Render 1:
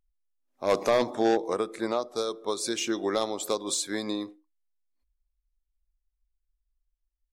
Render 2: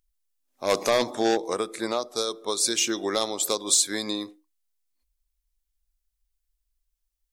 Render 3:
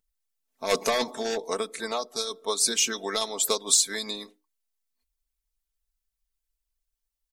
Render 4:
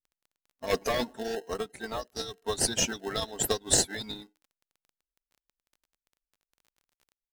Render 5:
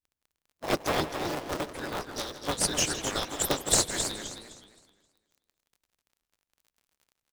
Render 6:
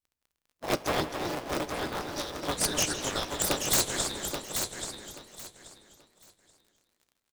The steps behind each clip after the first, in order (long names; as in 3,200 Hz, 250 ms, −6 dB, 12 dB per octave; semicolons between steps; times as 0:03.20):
high-shelf EQ 2,800 Hz +11 dB
harmonic and percussive parts rebalanced harmonic −10 dB; comb filter 4.5 ms, depth 69%
spectral dynamics exaggerated over time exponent 1.5; in parallel at −5 dB: decimation without filtering 38×; on the sum: surface crackle 22 per second −46 dBFS; level −2.5 dB
sub-harmonics by changed cycles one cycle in 3, inverted; slap from a distant wall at 28 metres, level −12 dB; feedback echo with a swinging delay time 260 ms, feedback 30%, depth 180 cents, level −8 dB
tuned comb filter 61 Hz, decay 0.33 s, harmonics all, mix 40%; wrap-around overflow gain 18 dB; repeating echo 831 ms, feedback 22%, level −6.5 dB; level +2 dB